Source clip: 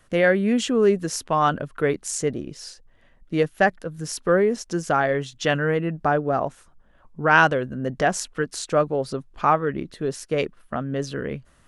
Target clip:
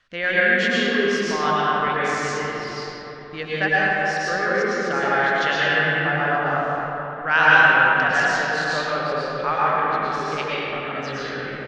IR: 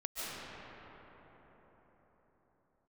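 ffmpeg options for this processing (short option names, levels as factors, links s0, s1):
-filter_complex "[0:a]firequalizer=gain_entry='entry(360,0);entry(1600,13);entry(4400,14);entry(10000,-15)':delay=0.05:min_phase=1[s0];[1:a]atrim=start_sample=2205,asetrate=57330,aresample=44100[s1];[s0][s1]afir=irnorm=-1:irlink=0,volume=0.473"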